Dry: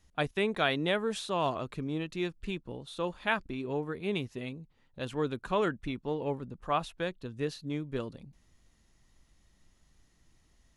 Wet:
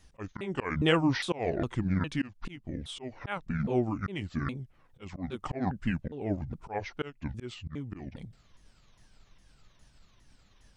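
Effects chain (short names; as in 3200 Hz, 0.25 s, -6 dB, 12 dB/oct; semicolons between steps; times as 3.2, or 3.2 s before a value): repeated pitch sweeps -11.5 st, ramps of 0.408 s; auto swell 0.282 s; gain +7 dB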